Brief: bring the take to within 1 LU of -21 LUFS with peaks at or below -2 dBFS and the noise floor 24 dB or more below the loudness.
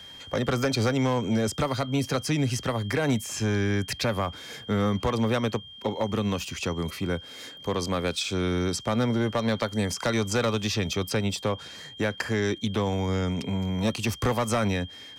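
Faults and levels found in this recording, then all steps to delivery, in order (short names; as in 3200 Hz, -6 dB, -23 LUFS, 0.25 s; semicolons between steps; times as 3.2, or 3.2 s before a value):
clipped 1.1%; flat tops at -18.5 dBFS; steady tone 3200 Hz; tone level -43 dBFS; loudness -27.5 LUFS; peak -18.5 dBFS; loudness target -21.0 LUFS
-> clip repair -18.5 dBFS; notch 3200 Hz, Q 30; gain +6.5 dB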